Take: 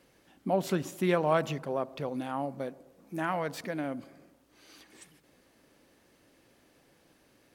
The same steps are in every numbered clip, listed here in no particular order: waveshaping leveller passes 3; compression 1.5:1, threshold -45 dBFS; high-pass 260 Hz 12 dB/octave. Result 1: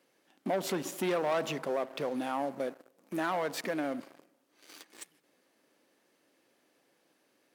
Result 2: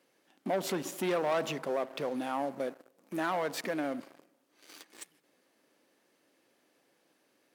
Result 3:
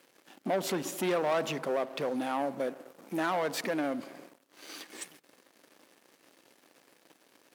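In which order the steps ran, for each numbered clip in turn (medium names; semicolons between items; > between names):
waveshaping leveller > high-pass > compression; waveshaping leveller > compression > high-pass; compression > waveshaping leveller > high-pass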